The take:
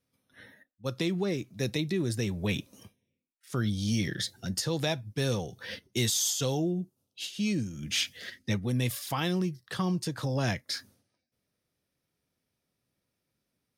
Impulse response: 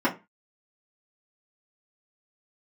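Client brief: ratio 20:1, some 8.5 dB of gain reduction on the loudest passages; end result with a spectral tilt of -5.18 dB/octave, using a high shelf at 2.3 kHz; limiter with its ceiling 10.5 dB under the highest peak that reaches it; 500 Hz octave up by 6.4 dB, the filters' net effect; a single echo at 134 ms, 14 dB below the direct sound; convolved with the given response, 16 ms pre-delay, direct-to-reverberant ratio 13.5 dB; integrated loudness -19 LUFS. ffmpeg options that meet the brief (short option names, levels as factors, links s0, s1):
-filter_complex "[0:a]equalizer=f=500:t=o:g=8.5,highshelf=f=2300:g=-8.5,acompressor=threshold=0.0355:ratio=20,alimiter=level_in=1.78:limit=0.0631:level=0:latency=1,volume=0.562,aecho=1:1:134:0.2,asplit=2[s0][s1];[1:a]atrim=start_sample=2205,adelay=16[s2];[s1][s2]afir=irnorm=-1:irlink=0,volume=0.0422[s3];[s0][s3]amix=inputs=2:normalize=0,volume=8.91"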